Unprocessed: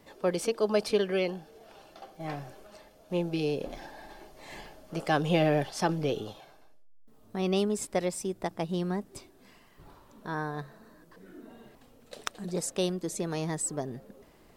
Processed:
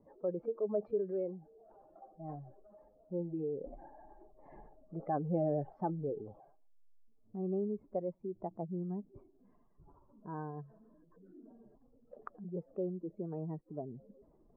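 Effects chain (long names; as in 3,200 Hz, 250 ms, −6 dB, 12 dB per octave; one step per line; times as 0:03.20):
expanding power law on the bin magnitudes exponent 1.8
low-pass filter 1,200 Hz 24 dB per octave
level −7.5 dB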